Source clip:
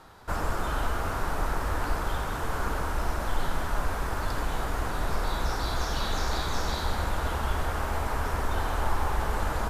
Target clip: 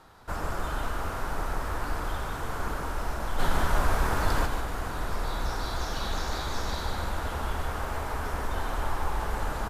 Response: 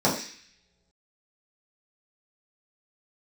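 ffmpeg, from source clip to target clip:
-filter_complex "[0:a]asplit=3[link_01][link_02][link_03];[link_01]afade=type=out:start_time=3.38:duration=0.02[link_04];[link_02]acontrast=72,afade=type=in:start_time=3.38:duration=0.02,afade=type=out:start_time=4.45:duration=0.02[link_05];[link_03]afade=type=in:start_time=4.45:duration=0.02[link_06];[link_04][link_05][link_06]amix=inputs=3:normalize=0,aecho=1:1:149:0.422,volume=-3dB"

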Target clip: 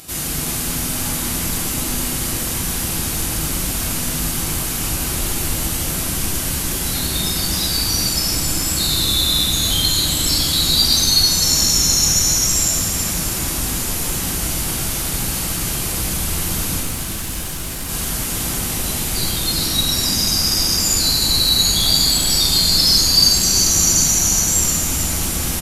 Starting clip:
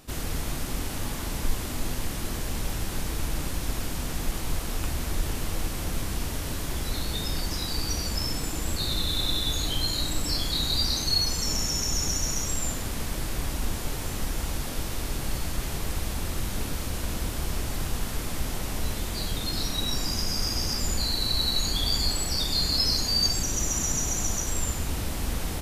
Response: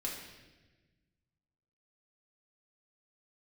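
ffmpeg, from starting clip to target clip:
-filter_complex "[0:a]acompressor=mode=upward:threshold=-43dB:ratio=2.5,crystalizer=i=2.5:c=0,asettb=1/sr,asplit=3[link_01][link_02][link_03];[link_01]atrim=end=16.794[link_04];[link_02]atrim=start=16.79:end=17.89,asetpts=PTS-STARTPTS,afade=type=in:duration=0.004:curve=qsin,afade=type=out:start_time=1.096:duration=0.004:curve=qsin,asoftclip=type=hard:threshold=-29.5dB[link_05];[link_03]atrim=start=17.886[link_06];[link_04][link_05]acrossfade=duration=0.004:curve1=hsin:curve2=qsin[link_07];[link_07][link_06]acrossfade=duration=0.004:curve1=qsin:curve2=hsin,highpass=44,asplit=7[link_08][link_09][link_10][link_11][link_12][link_13][link_14];[link_09]adelay=369,afreqshift=-71,volume=-9.5dB[link_15];[link_10]adelay=738,afreqshift=-142,volume=-15dB[link_16];[link_11]adelay=1107,afreqshift=-213,volume=-20.5dB[link_17];[link_12]adelay=1476,afreqshift=-284,volume=-26dB[link_18];[link_13]adelay=1845,afreqshift=-355,volume=-31.6dB[link_19];[link_14]adelay=2214,afreqshift=-426,volume=-37.1dB[link_20];[link_08][link_15][link_16][link_17][link_18][link_19][link_20]amix=inputs=7:normalize=0[link_21];[1:a]atrim=start_sample=2205,asetrate=26901,aresample=44100[link_22];[link_21][link_22]afir=irnorm=-1:irlink=0,volume=1dB"

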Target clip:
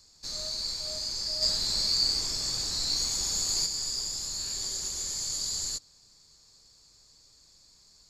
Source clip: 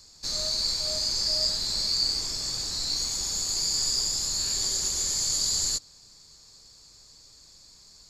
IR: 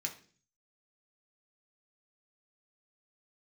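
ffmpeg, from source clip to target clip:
-filter_complex "[0:a]asplit=3[link_01][link_02][link_03];[link_01]afade=type=out:start_time=1.41:duration=0.02[link_04];[link_02]acontrast=49,afade=type=in:start_time=1.41:duration=0.02,afade=type=out:start_time=3.65:duration=0.02[link_05];[link_03]afade=type=in:start_time=3.65:duration=0.02[link_06];[link_04][link_05][link_06]amix=inputs=3:normalize=0,volume=-6dB"

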